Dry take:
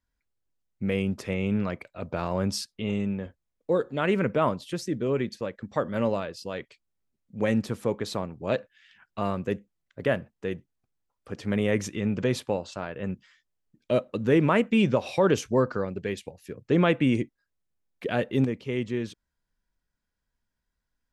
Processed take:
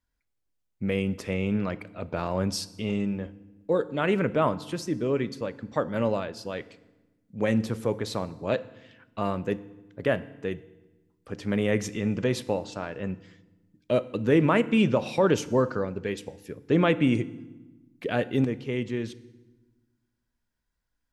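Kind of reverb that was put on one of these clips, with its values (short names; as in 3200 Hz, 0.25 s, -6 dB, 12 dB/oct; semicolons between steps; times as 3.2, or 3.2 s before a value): FDN reverb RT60 1.1 s, low-frequency decay 1.6×, high-frequency decay 0.85×, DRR 15 dB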